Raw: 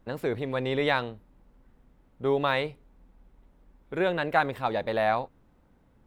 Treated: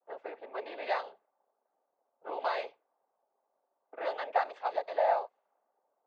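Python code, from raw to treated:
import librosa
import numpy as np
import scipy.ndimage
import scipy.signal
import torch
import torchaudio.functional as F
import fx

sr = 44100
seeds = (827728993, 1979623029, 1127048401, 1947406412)

y = fx.ladder_highpass(x, sr, hz=590.0, resonance_pct=60)
y = fx.noise_vocoder(y, sr, seeds[0], bands=16)
y = fx.env_lowpass(y, sr, base_hz=940.0, full_db=-29.0)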